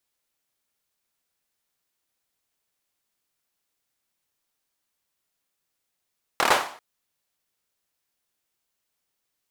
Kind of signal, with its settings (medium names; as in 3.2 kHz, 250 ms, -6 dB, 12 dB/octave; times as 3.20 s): hand clap length 0.39 s, bursts 5, apart 26 ms, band 890 Hz, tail 0.47 s